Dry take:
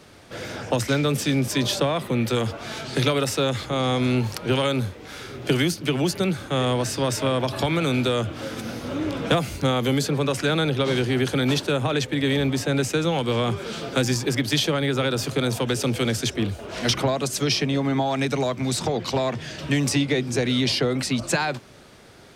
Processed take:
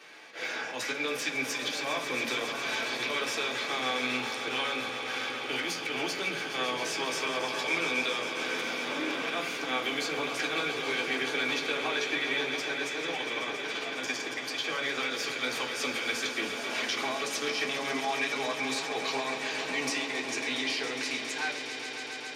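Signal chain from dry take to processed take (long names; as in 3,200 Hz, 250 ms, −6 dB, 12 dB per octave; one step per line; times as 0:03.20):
fade-out on the ending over 2.48 s
high-pass filter 450 Hz 12 dB per octave
parametric band 2,600 Hz +4 dB 1.2 octaves
volume swells 108 ms
downward compressor, threshold −28 dBFS, peak gain reduction 9 dB
0:12.43–0:14.67: amplitude tremolo 18 Hz, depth 80%
echo that builds up and dies away 137 ms, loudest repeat 5, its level −12 dB
convolution reverb RT60 0.45 s, pre-delay 3 ms, DRR −1.5 dB
level −7.5 dB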